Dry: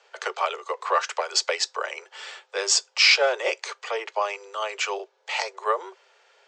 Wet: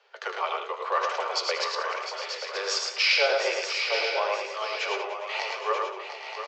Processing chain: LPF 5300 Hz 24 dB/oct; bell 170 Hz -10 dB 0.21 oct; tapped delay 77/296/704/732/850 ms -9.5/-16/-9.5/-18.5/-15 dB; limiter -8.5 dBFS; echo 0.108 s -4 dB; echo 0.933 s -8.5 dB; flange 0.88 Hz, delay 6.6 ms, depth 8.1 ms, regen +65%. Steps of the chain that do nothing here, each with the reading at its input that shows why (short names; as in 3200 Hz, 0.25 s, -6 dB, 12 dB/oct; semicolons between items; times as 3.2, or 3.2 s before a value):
bell 170 Hz: input band starts at 320 Hz